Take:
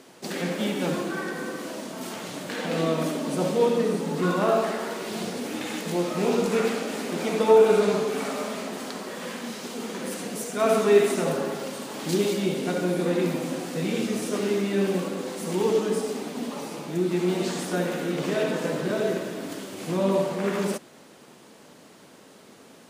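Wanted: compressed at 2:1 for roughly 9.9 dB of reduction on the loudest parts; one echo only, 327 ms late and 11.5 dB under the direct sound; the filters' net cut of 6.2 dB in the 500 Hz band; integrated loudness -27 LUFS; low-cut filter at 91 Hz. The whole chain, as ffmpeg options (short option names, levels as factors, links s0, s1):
-af "highpass=91,equalizer=f=500:t=o:g=-8,acompressor=threshold=0.0158:ratio=2,aecho=1:1:327:0.266,volume=2.66"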